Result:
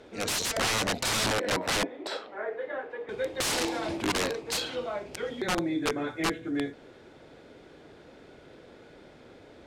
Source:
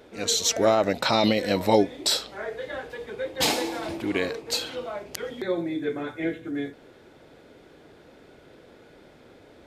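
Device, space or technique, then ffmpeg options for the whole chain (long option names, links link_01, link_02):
overflowing digital effects unit: -filter_complex "[0:a]asettb=1/sr,asplit=3[link_01][link_02][link_03];[link_01]atrim=end=1.264[link_04];[link_02]atrim=start=1.26:end=3.09,asetpts=PTS-STARTPTS,afade=type=in:duration=0.004:curve=qsin,afade=type=out:start_time=1.826:duration=0.004:curve=qsin,acrossover=split=240 2300:gain=0.0794 1 0.0794[link_05][link_06][link_07];[link_05][link_06][link_07]amix=inputs=3:normalize=0[link_08];[link_03]atrim=start=3.086[link_09];[link_04][link_08]acrossfade=duration=0.004:curve1=hsin:curve2=qsin[link_10];[link_10][link_09]acrossfade=duration=0.004:curve1=qsin:curve2=hsin,aeval=exprs='(mod(11.2*val(0)+1,2)-1)/11.2':channel_layout=same,lowpass=9100"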